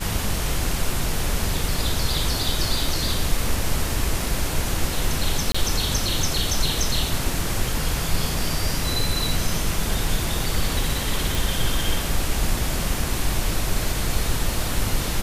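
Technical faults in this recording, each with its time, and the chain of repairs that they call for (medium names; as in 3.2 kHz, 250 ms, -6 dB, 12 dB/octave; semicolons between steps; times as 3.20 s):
5.52–5.54 s: dropout 25 ms
11.35 s: pop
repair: de-click; interpolate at 5.52 s, 25 ms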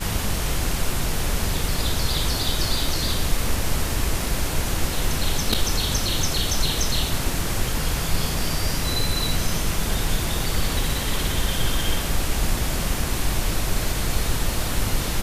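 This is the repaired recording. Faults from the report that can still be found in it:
nothing left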